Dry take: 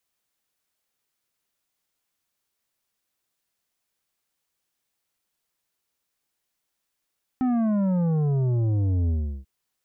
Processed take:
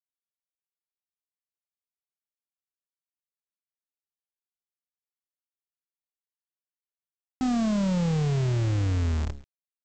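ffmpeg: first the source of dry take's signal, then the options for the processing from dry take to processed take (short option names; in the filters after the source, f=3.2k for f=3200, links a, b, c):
-f lavfi -i "aevalsrc='0.0891*clip((2.04-t)/0.36,0,1)*tanh(2.82*sin(2*PI*260*2.04/log(65/260)*(exp(log(65/260)*t/2.04)-1)))/tanh(2.82)':d=2.04:s=44100"
-af "tremolo=f=37:d=0.4,aresample=16000,acrusher=bits=6:dc=4:mix=0:aa=0.000001,aresample=44100"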